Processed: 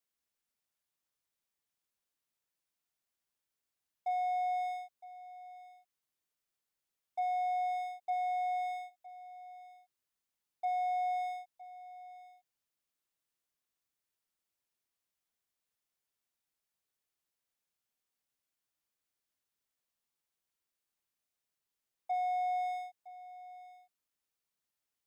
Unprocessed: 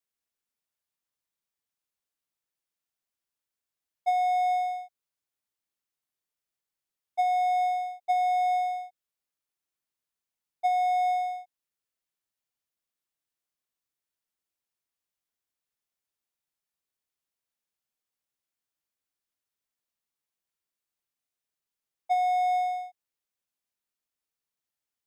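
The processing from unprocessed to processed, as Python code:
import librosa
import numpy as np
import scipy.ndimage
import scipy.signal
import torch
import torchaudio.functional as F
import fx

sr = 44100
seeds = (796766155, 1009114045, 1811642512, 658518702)

y = fx.dynamic_eq(x, sr, hz=560.0, q=0.88, threshold_db=-40.0, ratio=4.0, max_db=-7)
y = 10.0 ** (-28.0 / 20.0) * np.tanh(y / 10.0 ** (-28.0 / 20.0))
y = y + 10.0 ** (-17.0 / 20.0) * np.pad(y, (int(962 * sr / 1000.0), 0))[:len(y)]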